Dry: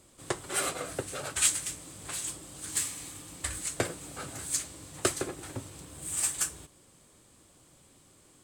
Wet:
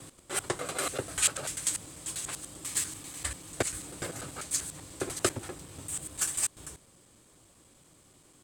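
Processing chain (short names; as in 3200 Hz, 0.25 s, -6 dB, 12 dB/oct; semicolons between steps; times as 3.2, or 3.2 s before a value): slices in reverse order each 98 ms, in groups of 3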